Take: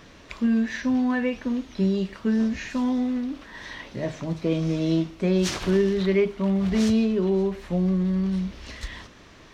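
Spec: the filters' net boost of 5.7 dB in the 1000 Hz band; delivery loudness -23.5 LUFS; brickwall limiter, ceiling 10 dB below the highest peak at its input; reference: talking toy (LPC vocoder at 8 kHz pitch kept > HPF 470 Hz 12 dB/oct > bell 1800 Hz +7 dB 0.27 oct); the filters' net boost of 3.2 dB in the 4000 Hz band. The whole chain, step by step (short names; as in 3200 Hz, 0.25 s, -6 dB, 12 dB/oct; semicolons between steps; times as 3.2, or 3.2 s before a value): bell 1000 Hz +7 dB; bell 4000 Hz +3.5 dB; limiter -20 dBFS; LPC vocoder at 8 kHz pitch kept; HPF 470 Hz 12 dB/oct; bell 1800 Hz +7 dB 0.27 oct; gain +11 dB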